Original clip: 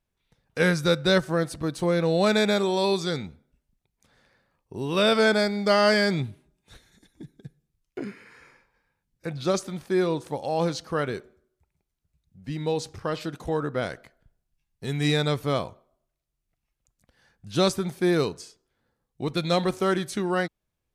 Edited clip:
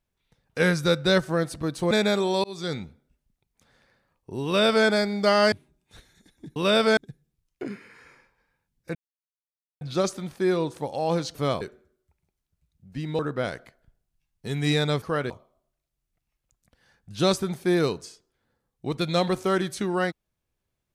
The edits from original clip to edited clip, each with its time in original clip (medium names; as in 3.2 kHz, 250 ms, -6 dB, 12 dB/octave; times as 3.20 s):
1.91–2.34 s: delete
2.87–3.17 s: fade in
4.88–5.29 s: copy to 7.33 s
5.95–6.29 s: delete
9.31 s: insert silence 0.86 s
10.85–11.13 s: swap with 15.40–15.66 s
12.71–13.57 s: delete